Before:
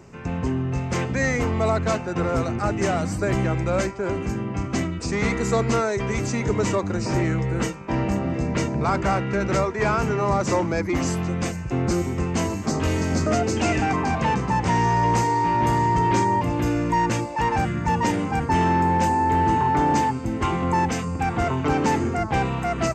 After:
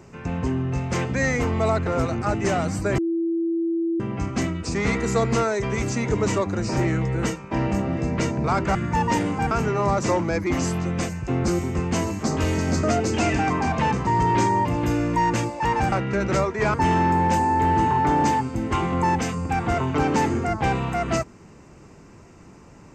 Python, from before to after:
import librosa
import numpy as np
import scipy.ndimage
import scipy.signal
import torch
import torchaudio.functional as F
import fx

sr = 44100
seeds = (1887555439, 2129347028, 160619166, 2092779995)

y = fx.edit(x, sr, fx.cut(start_s=1.87, length_s=0.37),
    fx.bleep(start_s=3.35, length_s=1.02, hz=333.0, db=-20.5),
    fx.swap(start_s=9.12, length_s=0.82, other_s=17.68, other_length_s=0.76),
    fx.cut(start_s=14.5, length_s=1.33), tone=tone)